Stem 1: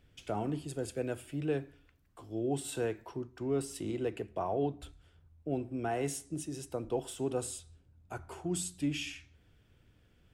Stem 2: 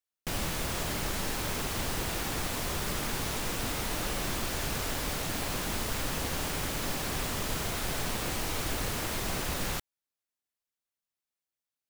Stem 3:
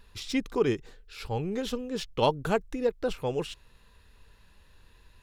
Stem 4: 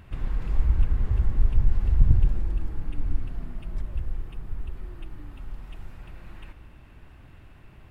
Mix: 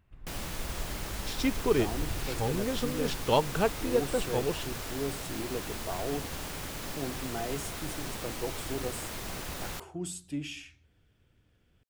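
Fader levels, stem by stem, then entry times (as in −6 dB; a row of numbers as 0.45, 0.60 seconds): −2.5, −5.5, −0.5, −19.0 decibels; 1.50, 0.00, 1.10, 0.00 seconds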